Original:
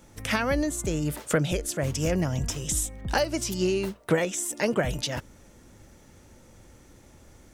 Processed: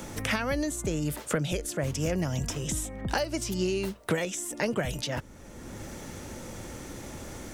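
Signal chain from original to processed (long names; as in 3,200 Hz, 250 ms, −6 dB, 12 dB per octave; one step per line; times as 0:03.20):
multiband upward and downward compressor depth 70%
level −3 dB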